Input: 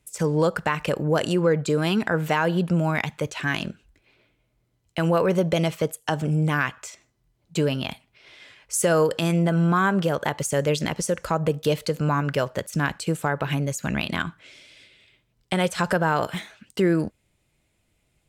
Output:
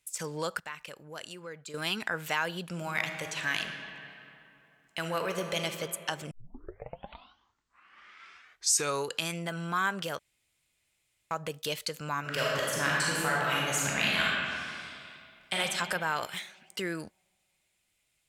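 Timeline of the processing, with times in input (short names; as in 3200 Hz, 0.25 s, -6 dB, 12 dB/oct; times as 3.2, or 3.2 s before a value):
0.6–1.74 gain -10 dB
2.64–5.6 reverb throw, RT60 2.9 s, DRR 5 dB
6.31 tape start 2.99 s
10.19–11.31 room tone
12.2–15.54 reverb throw, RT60 2.4 s, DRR -6 dB
whole clip: tilt shelf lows -9 dB, about 920 Hz; gain -9 dB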